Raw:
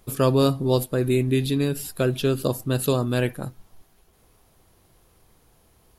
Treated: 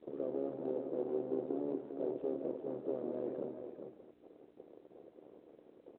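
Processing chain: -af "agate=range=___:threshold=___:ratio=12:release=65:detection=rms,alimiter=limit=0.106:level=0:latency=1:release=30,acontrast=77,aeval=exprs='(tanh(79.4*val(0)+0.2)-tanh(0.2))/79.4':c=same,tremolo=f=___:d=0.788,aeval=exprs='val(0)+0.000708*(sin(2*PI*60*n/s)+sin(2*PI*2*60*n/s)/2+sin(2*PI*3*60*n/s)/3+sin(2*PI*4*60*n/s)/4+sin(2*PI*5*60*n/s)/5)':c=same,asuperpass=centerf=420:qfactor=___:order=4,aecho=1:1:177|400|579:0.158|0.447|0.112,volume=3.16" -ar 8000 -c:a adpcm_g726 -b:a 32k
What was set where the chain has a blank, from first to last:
0.0447, 0.00141, 75, 1.5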